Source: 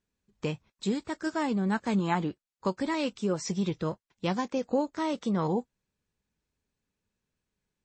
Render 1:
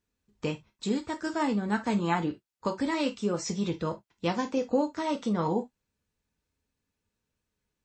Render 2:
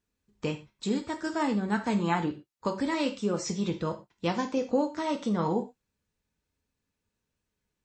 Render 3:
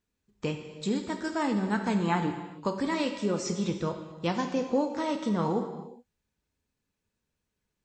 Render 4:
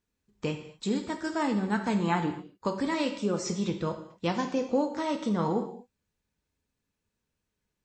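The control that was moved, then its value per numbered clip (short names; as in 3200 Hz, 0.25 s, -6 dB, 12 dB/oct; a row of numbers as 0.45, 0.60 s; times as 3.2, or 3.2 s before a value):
non-linear reverb, gate: 90, 140, 440, 270 ms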